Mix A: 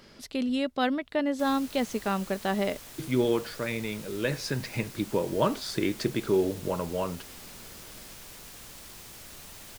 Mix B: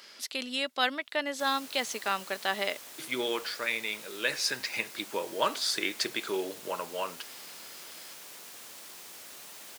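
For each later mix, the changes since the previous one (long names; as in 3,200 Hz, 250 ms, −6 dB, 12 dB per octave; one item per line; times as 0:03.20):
speech: add tilt shelving filter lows −7.5 dB, about 920 Hz
master: add Bessel high-pass filter 390 Hz, order 2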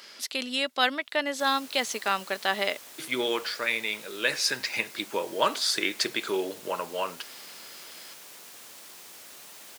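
speech +3.5 dB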